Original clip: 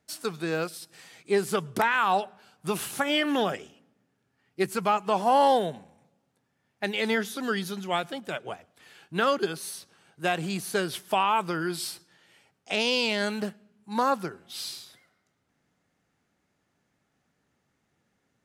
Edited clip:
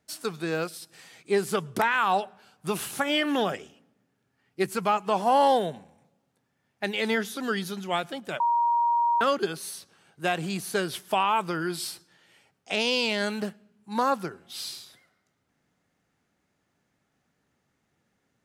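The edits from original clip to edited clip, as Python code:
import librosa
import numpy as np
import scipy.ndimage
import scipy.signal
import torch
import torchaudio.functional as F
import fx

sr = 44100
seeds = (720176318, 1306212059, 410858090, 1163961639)

y = fx.edit(x, sr, fx.bleep(start_s=8.4, length_s=0.81, hz=944.0, db=-20.0), tone=tone)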